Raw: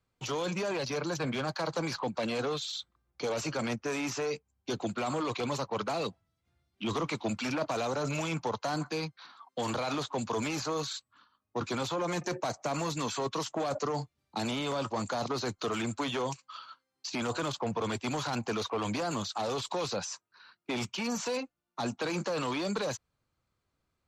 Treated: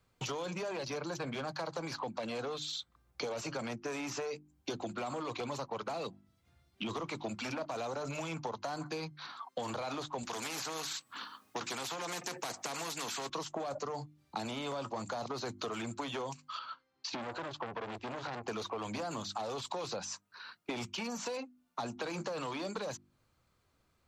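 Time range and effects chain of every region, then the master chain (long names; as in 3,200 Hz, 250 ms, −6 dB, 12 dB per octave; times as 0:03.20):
0:10.23–0:13.30: high-pass filter 210 Hz + notch filter 590 Hz, Q 6.6 + every bin compressed towards the loudest bin 2 to 1
0:16.59–0:18.48: high-frequency loss of the air 140 metres + saturating transformer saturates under 1,500 Hz
whole clip: mains-hum notches 50/100/150/200/250/300/350 Hz; dynamic equaliser 740 Hz, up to +3 dB, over −43 dBFS, Q 1.1; downward compressor 6 to 1, threshold −44 dBFS; level +7 dB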